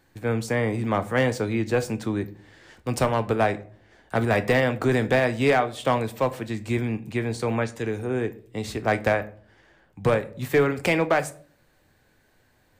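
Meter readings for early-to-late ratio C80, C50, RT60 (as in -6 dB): 22.0 dB, 18.0 dB, 0.50 s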